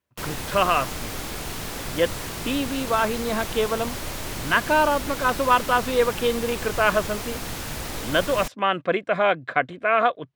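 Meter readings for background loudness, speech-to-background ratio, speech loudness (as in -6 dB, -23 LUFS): -31.5 LUFS, 8.0 dB, -23.5 LUFS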